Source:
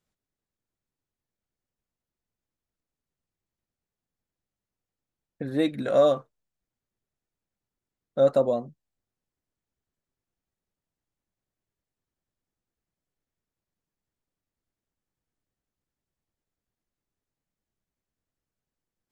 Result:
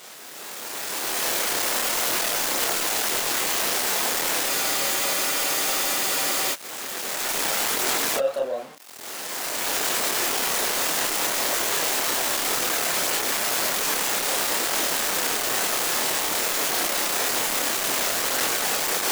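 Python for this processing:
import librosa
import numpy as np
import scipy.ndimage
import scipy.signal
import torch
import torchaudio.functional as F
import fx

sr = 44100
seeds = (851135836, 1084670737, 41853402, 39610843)

p1 = x + 0.5 * 10.0 ** (-33.5 / 20.0) * np.sign(x)
p2 = fx.recorder_agc(p1, sr, target_db=-15.5, rise_db_per_s=19.0, max_gain_db=30)
p3 = scipy.signal.sosfilt(scipy.signal.butter(2, 510.0, 'highpass', fs=sr, output='sos'), p2)
p4 = 10.0 ** (-25.5 / 20.0) * (np.abs((p3 / 10.0 ** (-25.5 / 20.0) + 3.0) % 4.0 - 2.0) - 1.0)
p5 = p3 + (p4 * librosa.db_to_amplitude(-10.0))
p6 = fx.chorus_voices(p5, sr, voices=2, hz=0.95, base_ms=28, depth_ms=4.2, mix_pct=45)
y = fx.spec_freeze(p6, sr, seeds[0], at_s=4.5, hold_s=2.04)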